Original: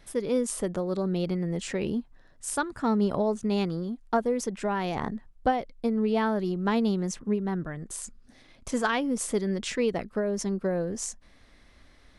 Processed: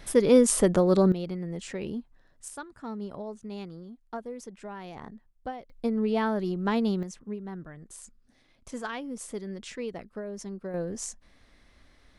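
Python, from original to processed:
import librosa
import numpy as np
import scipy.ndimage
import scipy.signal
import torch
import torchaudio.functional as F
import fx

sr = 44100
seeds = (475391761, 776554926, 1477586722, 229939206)

y = fx.gain(x, sr, db=fx.steps((0.0, 8.0), (1.12, -5.0), (2.48, -12.0), (5.7, -1.0), (7.03, -9.0), (10.74, -2.5)))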